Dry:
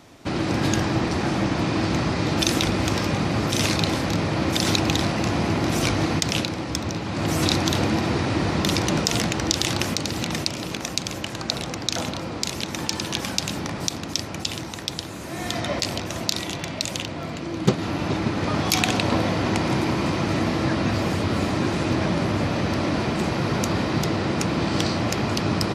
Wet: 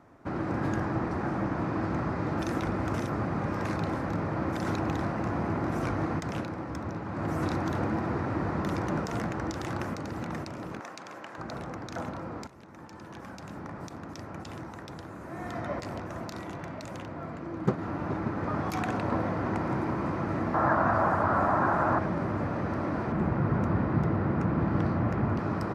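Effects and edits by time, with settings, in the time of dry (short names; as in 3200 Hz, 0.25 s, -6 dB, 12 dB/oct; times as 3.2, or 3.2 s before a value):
2.94–3.65 reverse
10.8–11.38 weighting filter A
12.47–14.5 fade in, from -14.5 dB
20.54–21.99 band shelf 1000 Hz +11.5 dB
23.12–25.39 tone controls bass +7 dB, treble -10 dB
whole clip: resonant high shelf 2200 Hz -14 dB, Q 1.5; gain -7.5 dB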